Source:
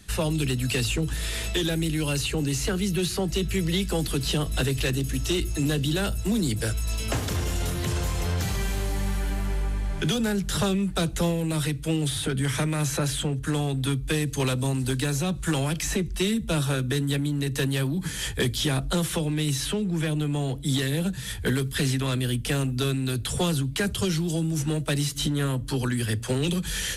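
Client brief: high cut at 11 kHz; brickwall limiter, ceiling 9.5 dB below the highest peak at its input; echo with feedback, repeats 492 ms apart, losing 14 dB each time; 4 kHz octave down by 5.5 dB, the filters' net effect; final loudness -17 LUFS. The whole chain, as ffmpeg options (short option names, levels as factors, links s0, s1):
-af "lowpass=11000,equalizer=f=4000:t=o:g=-7,alimiter=level_in=1.12:limit=0.0631:level=0:latency=1,volume=0.891,aecho=1:1:492|984:0.2|0.0399,volume=5.96"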